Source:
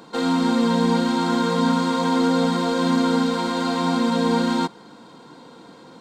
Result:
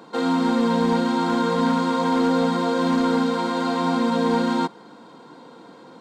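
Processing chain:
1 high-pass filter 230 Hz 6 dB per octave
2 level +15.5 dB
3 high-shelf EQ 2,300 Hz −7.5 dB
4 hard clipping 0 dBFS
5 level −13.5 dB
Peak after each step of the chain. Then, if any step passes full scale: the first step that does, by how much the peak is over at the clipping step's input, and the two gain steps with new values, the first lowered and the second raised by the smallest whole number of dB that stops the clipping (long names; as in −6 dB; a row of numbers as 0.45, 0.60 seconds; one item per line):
−10.0, +5.5, +4.5, 0.0, −13.5 dBFS
step 2, 4.5 dB
step 2 +10.5 dB, step 5 −8.5 dB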